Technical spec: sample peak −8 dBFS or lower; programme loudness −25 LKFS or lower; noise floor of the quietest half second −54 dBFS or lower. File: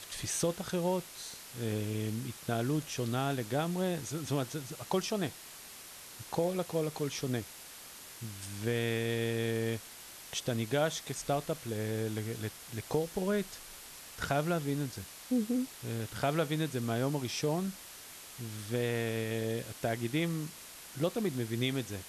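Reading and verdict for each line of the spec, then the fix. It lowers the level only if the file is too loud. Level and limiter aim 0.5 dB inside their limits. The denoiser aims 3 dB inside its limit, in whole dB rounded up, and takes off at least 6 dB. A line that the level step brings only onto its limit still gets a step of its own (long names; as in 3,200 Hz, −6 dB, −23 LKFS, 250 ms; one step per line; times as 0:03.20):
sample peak −18.5 dBFS: in spec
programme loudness −34.5 LKFS: in spec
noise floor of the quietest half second −50 dBFS: out of spec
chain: broadband denoise 7 dB, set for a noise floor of −50 dBFS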